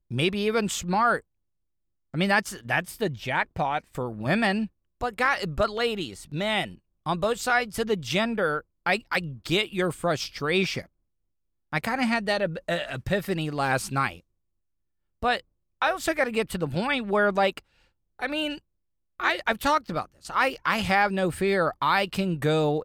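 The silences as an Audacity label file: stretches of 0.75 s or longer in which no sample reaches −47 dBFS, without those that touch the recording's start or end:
1.210000	2.140000	silence
10.860000	11.720000	silence
14.200000	15.230000	silence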